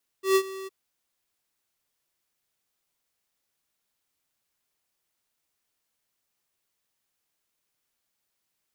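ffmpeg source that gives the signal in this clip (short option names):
-f lavfi -i "aevalsrc='0.119*(2*lt(mod(384*t,1),0.5)-1)':d=0.463:s=44100,afade=t=in:d=0.126,afade=t=out:st=0.126:d=0.067:silence=0.119,afade=t=out:st=0.44:d=0.023"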